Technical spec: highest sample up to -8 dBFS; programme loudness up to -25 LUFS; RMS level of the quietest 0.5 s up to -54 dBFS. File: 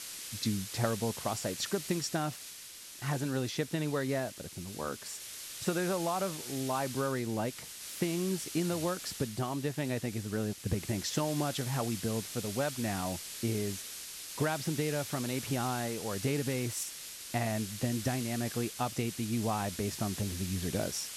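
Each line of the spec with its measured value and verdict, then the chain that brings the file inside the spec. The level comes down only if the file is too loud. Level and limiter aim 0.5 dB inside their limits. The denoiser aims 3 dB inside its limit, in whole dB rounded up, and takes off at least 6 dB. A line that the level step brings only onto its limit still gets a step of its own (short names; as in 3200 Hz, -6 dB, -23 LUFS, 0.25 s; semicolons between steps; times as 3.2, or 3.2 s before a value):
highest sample -17.0 dBFS: OK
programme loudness -34.5 LUFS: OK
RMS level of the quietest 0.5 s -48 dBFS: fail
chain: denoiser 9 dB, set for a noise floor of -48 dBFS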